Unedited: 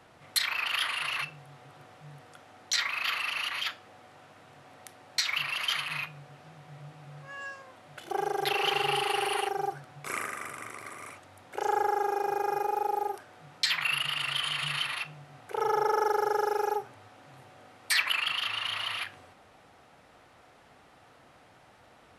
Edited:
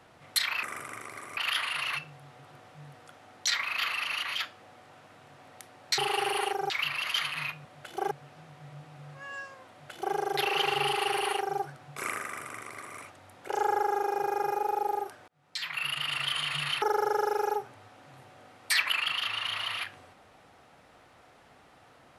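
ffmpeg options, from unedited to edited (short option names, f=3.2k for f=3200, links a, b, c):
-filter_complex "[0:a]asplit=9[a][b][c][d][e][f][g][h][i];[a]atrim=end=0.632[j];[b]atrim=start=10.318:end=11.062[k];[c]atrim=start=0.628:end=5.242[l];[d]atrim=start=8.938:end=9.662[m];[e]atrim=start=5.238:end=6.192[n];[f]atrim=start=7.778:end=8.242[o];[g]atrim=start=6.188:end=13.36,asetpts=PTS-STARTPTS,afade=t=out:st=7.168:d=0.004:c=hsin[p];[h]atrim=start=13.36:end=14.902,asetpts=PTS-STARTPTS,afade=t=in:d=0.83[q];[i]atrim=start=16.018[r];[j][k]acrossfade=d=0.004:c1=hsin:c2=hsin[s];[s][l]acrossfade=d=0.004:c1=hsin:c2=hsin[t];[t][m]acrossfade=d=0.004:c1=hsin:c2=hsin[u];[u][n]acrossfade=d=0.004:c1=hsin:c2=hsin[v];[v][o]acrossfade=d=0.004:c1=hsin:c2=hsin[w];[p][q]concat=n=2:v=0:a=1[x];[w][x]acrossfade=d=0.004:c1=hsin:c2=hsin[y];[y][r]acrossfade=d=0.004:c1=hsin:c2=hsin"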